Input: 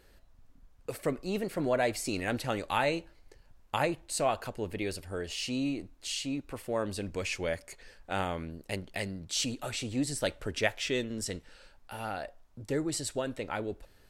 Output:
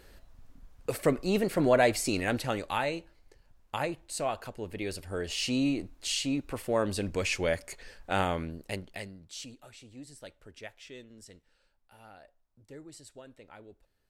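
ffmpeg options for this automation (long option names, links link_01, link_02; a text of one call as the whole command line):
ffmpeg -i in.wav -af "volume=12.5dB,afade=type=out:start_time=1.77:duration=1.13:silence=0.375837,afade=type=in:start_time=4.68:duration=0.79:silence=0.446684,afade=type=out:start_time=8.33:duration=0.78:silence=0.237137,afade=type=out:start_time=9.11:duration=0.59:silence=0.421697" out.wav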